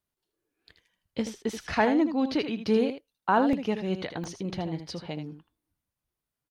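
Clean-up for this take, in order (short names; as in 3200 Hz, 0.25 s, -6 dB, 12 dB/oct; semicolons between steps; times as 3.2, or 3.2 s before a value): interpolate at 3.53/4.24, 2.1 ms; inverse comb 79 ms -9.5 dB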